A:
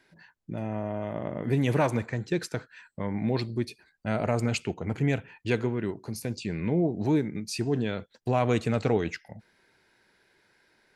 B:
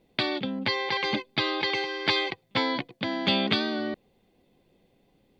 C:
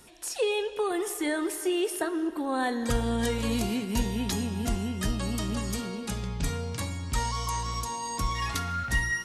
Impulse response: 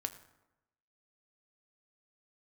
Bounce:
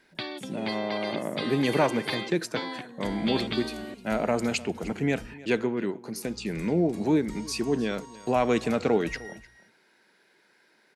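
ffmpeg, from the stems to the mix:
-filter_complex "[0:a]highpass=f=170:w=0.5412,highpass=f=170:w=1.3066,volume=2dB,asplit=2[a][b];[b]volume=-20dB[c];[1:a]volume=-8dB[d];[2:a]adelay=150,volume=-16dB,asplit=3[e][f][g];[e]atrim=end=5.34,asetpts=PTS-STARTPTS,afade=t=out:st=5.336:d=0.004:c=hsin[h];[f]atrim=start=5.34:end=6.16,asetpts=PTS-STARTPTS,volume=0[i];[g]atrim=start=6.16,asetpts=PTS-STARTPTS,afade=t=in:d=0.004:c=hsin[j];[h][i][j]concat=n=3:v=0:a=1,asplit=2[k][l];[l]volume=-13.5dB[m];[c][m]amix=inputs=2:normalize=0,aecho=0:1:304:1[n];[a][d][k][n]amix=inputs=4:normalize=0"

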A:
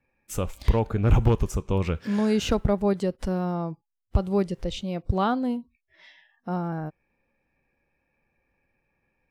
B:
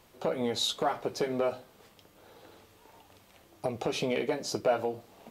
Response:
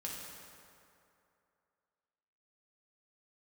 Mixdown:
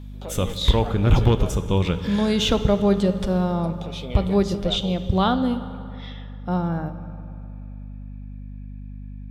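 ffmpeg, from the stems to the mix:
-filter_complex "[0:a]aeval=exprs='val(0)+0.0112*(sin(2*PI*50*n/s)+sin(2*PI*2*50*n/s)/2+sin(2*PI*3*50*n/s)/3+sin(2*PI*4*50*n/s)/4+sin(2*PI*5*50*n/s)/5)':c=same,volume=1dB,asplit=2[a][b];[b]volume=-6dB[c];[1:a]alimiter=limit=-20.5dB:level=0:latency=1:release=444,volume=-3.5dB[d];[2:a]atrim=start_sample=2205[e];[c][e]afir=irnorm=-1:irlink=0[f];[a][d][f]amix=inputs=3:normalize=0,equalizer=f=3.5k:t=o:w=0.28:g=13.5"

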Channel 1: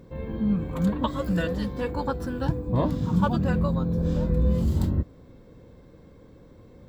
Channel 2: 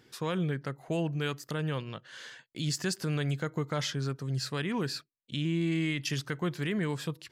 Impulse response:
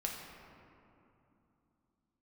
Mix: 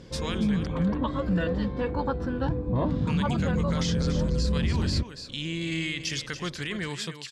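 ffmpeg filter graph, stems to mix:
-filter_complex "[0:a]lowpass=3.8k,volume=1dB[a];[1:a]lowpass=8.3k,equalizer=f=5.9k:w=0.3:g=14,alimiter=limit=-17dB:level=0:latency=1:release=37,volume=-3.5dB,asplit=3[b][c][d];[b]atrim=end=0.67,asetpts=PTS-STARTPTS,afade=t=out:st=0.666:d=0.004:c=hsin[e];[c]atrim=start=0.67:end=3.07,asetpts=PTS-STARTPTS,volume=0[f];[d]atrim=start=3.07,asetpts=PTS-STARTPTS,afade=t=in:d=0.004:c=hsin[g];[e][f][g]concat=n=3:v=0:a=1,asplit=2[h][i];[i]volume=-11dB,aecho=0:1:284:1[j];[a][h][j]amix=inputs=3:normalize=0,alimiter=limit=-18dB:level=0:latency=1:release=26"

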